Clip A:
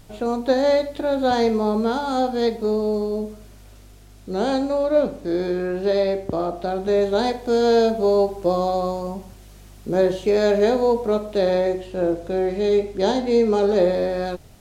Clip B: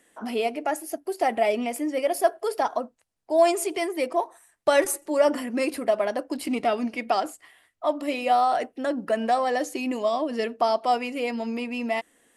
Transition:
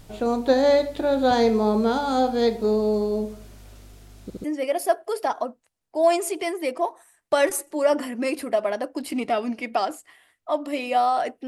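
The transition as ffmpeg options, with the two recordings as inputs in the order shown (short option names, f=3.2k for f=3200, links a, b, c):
-filter_complex "[0:a]apad=whole_dur=11.47,atrim=end=11.47,asplit=3[a][b][c];[a]atrim=end=4.302[d];[b]atrim=start=4.228:end=4.302[e];[c]atrim=start=4.228:end=4.302[f];[1:a]atrim=start=1.788:end=8.82[g];[d][e]acrossfade=d=0.004:c1=hsin:c2=hsin[h];[h][f]acrossfade=d=0.004:c1=hsin:c2=hsin[i];[i][g]acrossfade=d=0.004:c1=hsin:c2=hsin"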